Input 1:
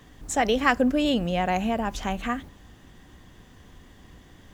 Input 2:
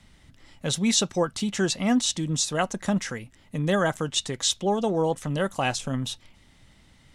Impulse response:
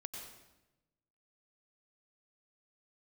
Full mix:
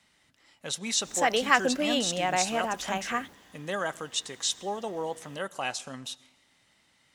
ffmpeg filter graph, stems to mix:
-filter_complex "[0:a]highpass=f=690:p=1,adelay=850,volume=1dB[a];[1:a]highpass=f=670:p=1,bandreject=f=3.4k:w=24,volume=-5dB,asplit=2[b][c];[c]volume=-15dB[d];[2:a]atrim=start_sample=2205[e];[d][e]afir=irnorm=-1:irlink=0[f];[a][b][f]amix=inputs=3:normalize=0"

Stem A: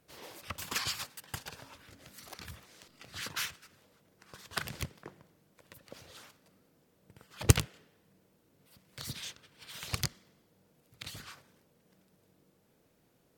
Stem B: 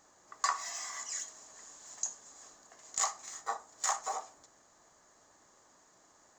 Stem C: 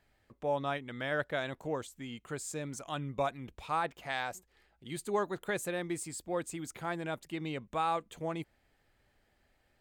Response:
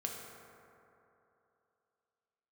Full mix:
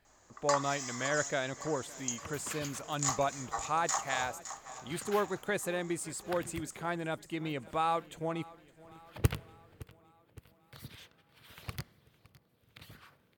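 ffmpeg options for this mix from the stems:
-filter_complex "[0:a]equalizer=f=6.6k:w=0.78:g=-13,adelay=1750,volume=-5.5dB,asplit=3[a][b][c];[b]volume=-23dB[d];[c]volume=-19.5dB[e];[1:a]adelay=50,volume=-1dB,asplit=2[f][g];[g]volume=-11dB[h];[2:a]volume=1dB,asplit=2[i][j];[j]volume=-21.5dB[k];[3:a]atrim=start_sample=2205[l];[d][l]afir=irnorm=-1:irlink=0[m];[e][h][k]amix=inputs=3:normalize=0,aecho=0:1:564|1128|1692|2256|2820|3384|3948|4512:1|0.56|0.314|0.176|0.0983|0.0551|0.0308|0.0173[n];[a][f][i][m][n]amix=inputs=5:normalize=0"

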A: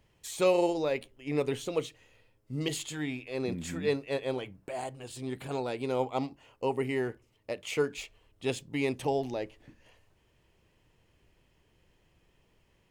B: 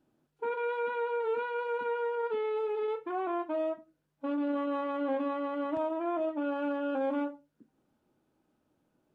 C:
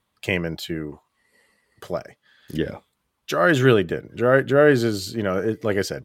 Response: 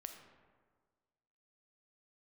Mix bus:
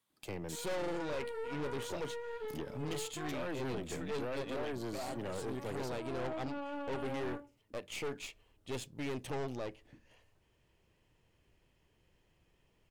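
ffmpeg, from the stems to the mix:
-filter_complex "[0:a]adelay=250,volume=-1.5dB[a];[1:a]highshelf=f=3.8k:g=9.5,adelay=100,volume=-5.5dB[b];[2:a]highpass=120,highshelf=f=3.6k:g=9.5,acrossover=split=240|710[c][d][e];[c]acompressor=threshold=-32dB:ratio=4[f];[d]acompressor=threshold=-23dB:ratio=4[g];[e]acompressor=threshold=-37dB:ratio=4[h];[f][g][h]amix=inputs=3:normalize=0,volume=-10dB,asplit=2[i][j];[j]apad=whole_len=407556[k];[b][k]sidechaincompress=threshold=-51dB:ratio=8:attack=42:release=129[l];[a][l][i]amix=inputs=3:normalize=0,aeval=exprs='(tanh(56.2*val(0)+0.6)-tanh(0.6))/56.2':c=same"

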